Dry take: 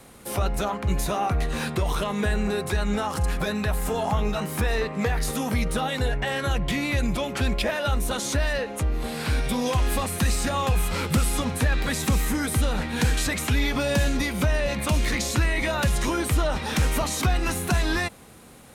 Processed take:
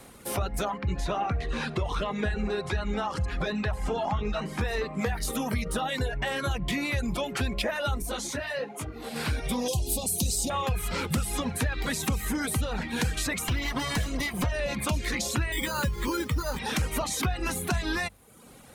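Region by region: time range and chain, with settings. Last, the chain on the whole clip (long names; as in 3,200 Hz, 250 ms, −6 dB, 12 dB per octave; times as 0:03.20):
0:00.78–0:04.61: low-pass filter 5,000 Hz + repeating echo 66 ms, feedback 56%, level −13.5 dB
0:08.02–0:09.16: high-pass filter 130 Hz + micro pitch shift up and down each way 40 cents
0:09.68–0:10.50: Butterworth band-reject 1,600 Hz, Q 0.52 + high-shelf EQ 2,700 Hz +9 dB
0:13.48–0:14.52: lower of the sound and its delayed copy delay 1 ms + notch filter 820 Hz, Q 19
0:15.52–0:16.59: bad sample-rate conversion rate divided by 8×, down filtered, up hold + Butterworth band-reject 700 Hz, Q 3.1
whole clip: reverb reduction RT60 0.77 s; hum removal 50.36 Hz, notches 4; downward compressor 2.5 to 1, threshold −26 dBFS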